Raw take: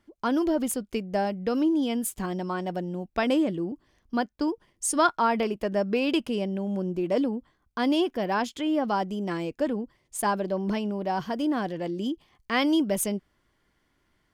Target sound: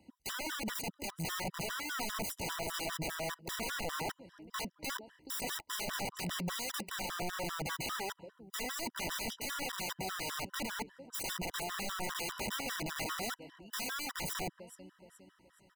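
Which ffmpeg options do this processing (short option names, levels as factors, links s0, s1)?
-filter_complex "[0:a]acompressor=threshold=0.0251:ratio=10,lowshelf=f=76:g=-7.5,asetrate=40131,aresample=44100,acrossover=split=290[s0][s1];[s0]acompressor=threshold=0.01:ratio=5[s2];[s2][s1]amix=inputs=2:normalize=0,highpass=43,asplit=2[s3][s4];[s4]aecho=0:1:423|846|1269:0.0794|0.0342|0.0147[s5];[s3][s5]amix=inputs=2:normalize=0,aeval=exprs='(mod(75*val(0)+1,2)-1)/75':c=same,afftfilt=real='re*gt(sin(2*PI*5*pts/sr)*(1-2*mod(floor(b*sr/1024/990),2)),0)':imag='im*gt(sin(2*PI*5*pts/sr)*(1-2*mod(floor(b*sr/1024/990),2)),0)':win_size=1024:overlap=0.75,volume=2.24"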